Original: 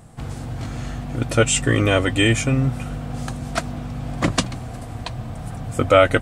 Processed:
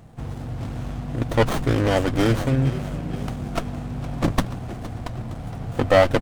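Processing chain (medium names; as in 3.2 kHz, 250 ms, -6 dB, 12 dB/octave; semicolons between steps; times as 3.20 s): frequency-shifting echo 464 ms, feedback 49%, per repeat +38 Hz, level -15 dB; sliding maximum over 17 samples; trim -1 dB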